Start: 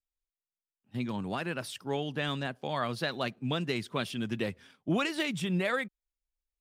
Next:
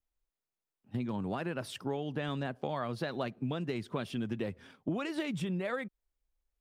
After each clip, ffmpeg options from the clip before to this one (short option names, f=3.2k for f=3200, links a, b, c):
-af "tiltshelf=f=1.5k:g=5.5,acompressor=threshold=-34dB:ratio=6,equalizer=f=170:t=o:w=1.5:g=-2,volume=3dB"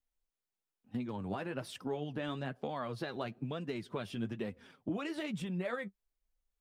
-af "flanger=delay=3.9:depth=6.4:regen=38:speed=1.1:shape=sinusoidal,volume=1dB"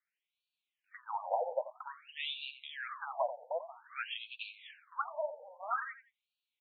-af "highpass=480,lowpass=7.1k,aecho=1:1:88|176|264:0.266|0.0612|0.0141,afftfilt=real='re*between(b*sr/1024,660*pow(3300/660,0.5+0.5*sin(2*PI*0.51*pts/sr))/1.41,660*pow(3300/660,0.5+0.5*sin(2*PI*0.51*pts/sr))*1.41)':imag='im*between(b*sr/1024,660*pow(3300/660,0.5+0.5*sin(2*PI*0.51*pts/sr))/1.41,660*pow(3300/660,0.5+0.5*sin(2*PI*0.51*pts/sr))*1.41)':win_size=1024:overlap=0.75,volume=11dB"